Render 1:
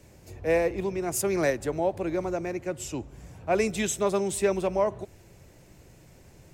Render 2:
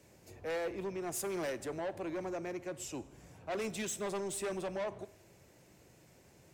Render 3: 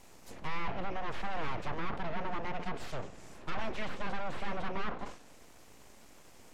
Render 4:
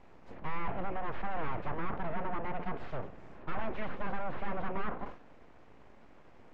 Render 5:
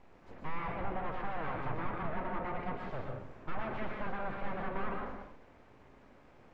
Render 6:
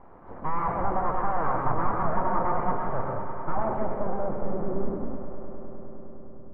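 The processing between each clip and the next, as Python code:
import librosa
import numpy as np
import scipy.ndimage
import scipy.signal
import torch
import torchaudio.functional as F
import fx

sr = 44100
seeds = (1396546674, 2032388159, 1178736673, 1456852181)

y1 = fx.highpass(x, sr, hz=180.0, slope=6)
y1 = 10.0 ** (-28.0 / 20.0) * np.tanh(y1 / 10.0 ** (-28.0 / 20.0))
y1 = fx.rev_schroeder(y1, sr, rt60_s=0.84, comb_ms=28, drr_db=18.0)
y1 = y1 * 10.0 ** (-5.5 / 20.0)
y2 = np.abs(y1)
y2 = fx.env_lowpass_down(y2, sr, base_hz=2600.0, full_db=-36.0)
y2 = fx.sustainer(y2, sr, db_per_s=130.0)
y2 = y2 * 10.0 ** (7.5 / 20.0)
y3 = scipy.signal.sosfilt(scipy.signal.butter(2, 1900.0, 'lowpass', fs=sr, output='sos'), y2)
y3 = y3 * 10.0 ** (1.0 / 20.0)
y4 = fx.rev_plate(y3, sr, seeds[0], rt60_s=0.52, hf_ratio=0.85, predelay_ms=105, drr_db=1.5)
y4 = y4 * 10.0 ** (-2.5 / 20.0)
y5 = fx.notch(y4, sr, hz=2600.0, q=15.0)
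y5 = fx.filter_sweep_lowpass(y5, sr, from_hz=1100.0, to_hz=140.0, start_s=3.35, end_s=6.09, q=1.8)
y5 = fx.echo_swell(y5, sr, ms=102, loudest=5, wet_db=-18)
y5 = y5 * 10.0 ** (8.0 / 20.0)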